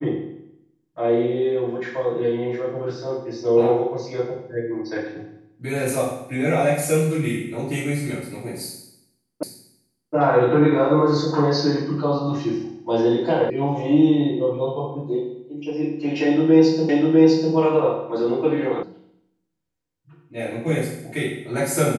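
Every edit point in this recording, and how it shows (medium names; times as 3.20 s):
9.43 s: repeat of the last 0.72 s
13.50 s: sound stops dead
16.89 s: repeat of the last 0.65 s
18.83 s: sound stops dead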